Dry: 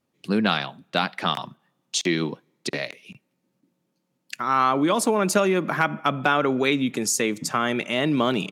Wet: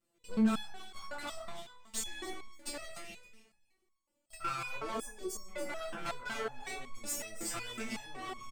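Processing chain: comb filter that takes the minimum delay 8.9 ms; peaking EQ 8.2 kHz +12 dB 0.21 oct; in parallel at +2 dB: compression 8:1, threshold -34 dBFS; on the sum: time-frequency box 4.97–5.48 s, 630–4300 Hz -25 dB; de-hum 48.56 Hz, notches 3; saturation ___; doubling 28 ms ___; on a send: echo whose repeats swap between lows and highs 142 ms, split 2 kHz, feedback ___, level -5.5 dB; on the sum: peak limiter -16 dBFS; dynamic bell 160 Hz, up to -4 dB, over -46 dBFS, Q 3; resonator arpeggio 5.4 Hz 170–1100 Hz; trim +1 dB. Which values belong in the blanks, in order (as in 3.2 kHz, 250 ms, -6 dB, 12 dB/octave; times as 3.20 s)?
-16.5 dBFS, -8 dB, 50%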